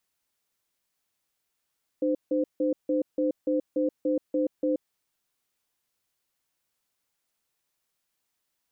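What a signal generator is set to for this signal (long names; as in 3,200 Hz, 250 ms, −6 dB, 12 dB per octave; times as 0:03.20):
tone pair in a cadence 302 Hz, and 515 Hz, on 0.13 s, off 0.16 s, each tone −25 dBFS 2.79 s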